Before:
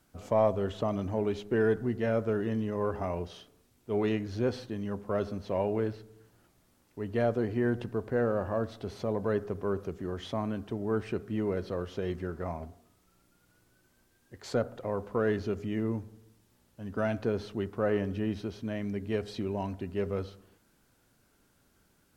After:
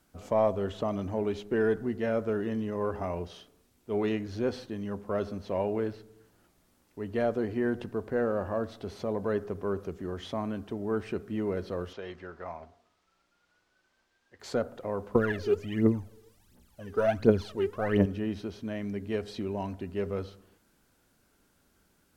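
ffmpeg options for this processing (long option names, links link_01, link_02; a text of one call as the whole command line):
ffmpeg -i in.wav -filter_complex "[0:a]asettb=1/sr,asplit=3[link_01][link_02][link_03];[link_01]atrim=end=11.934[link_04];[link_02]atrim=start=11.93:end=14.4,asetpts=PTS-STARTPTS,afade=type=in:duration=0.004:curve=qsin,afade=type=out:start_time=2.466:duration=0.004:curve=qsin,acrossover=split=530 6100:gain=0.251 1 0.0891[link_05][link_06][link_07];[link_05][link_06][link_07]amix=inputs=3:normalize=0[link_08];[link_03]atrim=start=14.396[link_09];[link_04][link_08]acrossfade=duration=0.004:curve1=hsin:curve2=qsin[link_10];[link_10][link_09]acrossfade=duration=0.004:curve1=qsin:curve2=hsin,asettb=1/sr,asplit=3[link_11][link_12][link_13];[link_11]atrim=end=15.154[link_14];[link_12]atrim=start=15.15:end=18.06,asetpts=PTS-STARTPTS,afade=type=in:duration=0.004:curve=qsin,afade=type=out:start_time=2.906:duration=0.004:curve=qsin,aphaser=in_gain=1:out_gain=1:delay=2.6:decay=0.76:speed=1.4:type=triangular[link_15];[link_13]atrim=start=18.056[link_16];[link_14][link_15]acrossfade=duration=0.004:curve1=hsin:curve2=qsin[link_17];[link_17][link_16]acrossfade=duration=0.004:curve1=qsin:curve2=hsin,equalizer=frequency=120:width_type=o:width=0.27:gain=-8" out.wav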